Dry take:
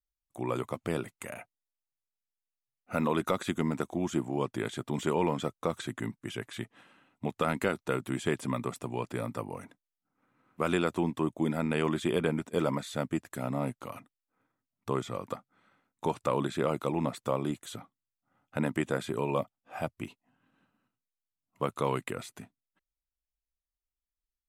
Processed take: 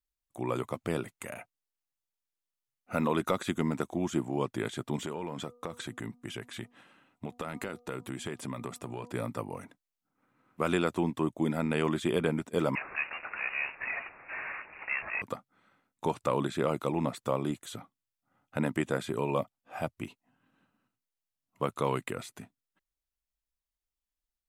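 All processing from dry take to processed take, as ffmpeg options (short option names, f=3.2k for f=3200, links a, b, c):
-filter_complex "[0:a]asettb=1/sr,asplit=3[a][b][c];[a]atrim=end=4.964[d];[b]atrim=start=4.96:end=9.13,asetpts=PTS-STARTPTS,afade=t=in:d=0.004:c=qsin,afade=t=out:st=4.166:d=0.004:c=qsin,acompressor=threshold=-33dB:ratio=4:attack=3.2:release=140:knee=1:detection=peak,bandreject=f=242.9:t=h:w=4,bandreject=f=485.8:t=h:w=4,bandreject=f=728.7:t=h:w=4,bandreject=f=971.6:t=h:w=4,bandreject=f=1.2145k:t=h:w=4[e];[c]atrim=start=9.126[f];[d][e]acrossfade=d=0.004:c1=hsin:c2=qsin[g];[g][f]acrossfade=d=0.004:c1=qsin:c2=hsin,asettb=1/sr,asplit=3[h][i][j];[h]atrim=end=12.754[k];[i]atrim=start=12.75:end=15.22,asetpts=PTS-STARTPTS,afade=t=in:d=0.004:c=qsin,afade=t=out:st=2.466:d=0.004:c=qsin,aeval=exprs='val(0)+0.5*0.0355*sgn(val(0))':c=same,highpass=f=520:w=0.5412,highpass=f=520:w=1.3066,lowpass=f=2.6k:t=q:w=0.5098,lowpass=f=2.6k:t=q:w=0.6013,lowpass=f=2.6k:t=q:w=0.9,lowpass=f=2.6k:t=q:w=2.563,afreqshift=-3100[l];[j]atrim=start=15.216[m];[k][l]acrossfade=d=0.004:c1=hsin:c2=qsin[n];[n][m]acrossfade=d=0.004:c1=qsin:c2=hsin"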